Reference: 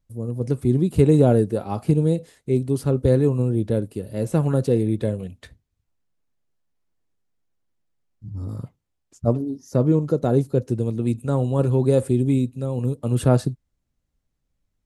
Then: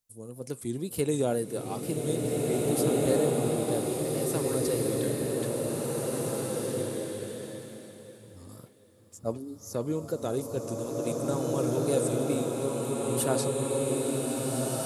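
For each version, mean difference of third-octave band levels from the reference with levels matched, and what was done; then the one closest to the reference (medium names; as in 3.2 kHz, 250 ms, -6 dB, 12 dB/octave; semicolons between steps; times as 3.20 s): 12.0 dB: RIAA curve recording; wow and flutter 78 cents; swelling reverb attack 2030 ms, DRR -4 dB; trim -7 dB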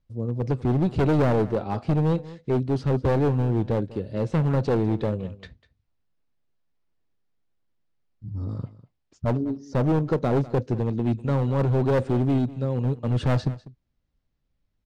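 5.5 dB: low-pass 5.2 kHz 24 dB/octave; overload inside the chain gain 18 dB; on a send: delay 198 ms -18 dB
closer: second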